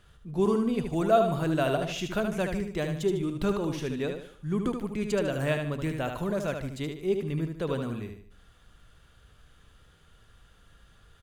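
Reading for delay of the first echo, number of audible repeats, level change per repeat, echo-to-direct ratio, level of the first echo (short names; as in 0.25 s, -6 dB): 75 ms, 4, -8.5 dB, -5.5 dB, -6.0 dB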